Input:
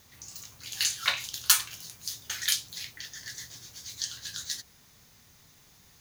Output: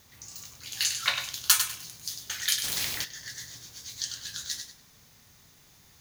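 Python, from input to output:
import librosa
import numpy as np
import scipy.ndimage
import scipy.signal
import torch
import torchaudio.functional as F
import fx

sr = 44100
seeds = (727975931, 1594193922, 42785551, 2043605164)

y = fx.echo_feedback(x, sr, ms=99, feedback_pct=24, wet_db=-8.0)
y = fx.spectral_comp(y, sr, ratio=2.0, at=(2.63, 3.03), fade=0.02)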